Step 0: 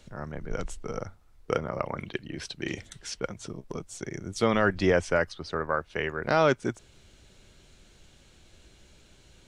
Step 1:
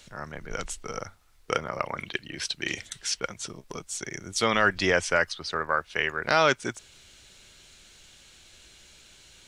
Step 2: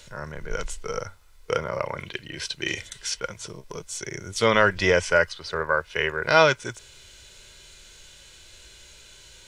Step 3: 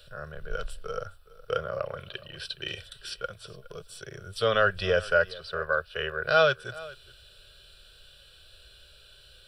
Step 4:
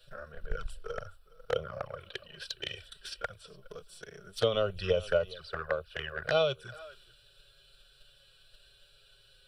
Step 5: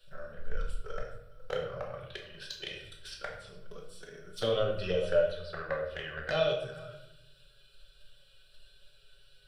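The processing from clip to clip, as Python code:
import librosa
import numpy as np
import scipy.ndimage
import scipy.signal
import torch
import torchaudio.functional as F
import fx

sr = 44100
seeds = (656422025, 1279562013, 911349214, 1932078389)

y1 = fx.tilt_shelf(x, sr, db=-7.0, hz=970.0)
y1 = y1 * librosa.db_to_amplitude(2.0)
y2 = y1 + 0.34 * np.pad(y1, (int(2.0 * sr / 1000.0), 0))[:len(y1)]
y2 = fx.hpss(y2, sr, part='harmonic', gain_db=9)
y2 = y2 * librosa.db_to_amplitude(-2.5)
y3 = fx.fixed_phaser(y2, sr, hz=1400.0, stages=8)
y3 = y3 + 10.0 ** (-20.0 / 20.0) * np.pad(y3, (int(415 * sr / 1000.0), 0))[:len(y3)]
y3 = y3 * librosa.db_to_amplitude(-2.5)
y4 = fx.transient(y3, sr, attack_db=7, sustain_db=3)
y4 = fx.env_flanger(y4, sr, rest_ms=8.2, full_db=-20.0)
y4 = y4 * librosa.db_to_amplitude(-5.0)
y5 = fx.room_shoebox(y4, sr, seeds[0], volume_m3=220.0, walls='mixed', distance_m=1.1)
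y5 = y5 * librosa.db_to_amplitude(-4.5)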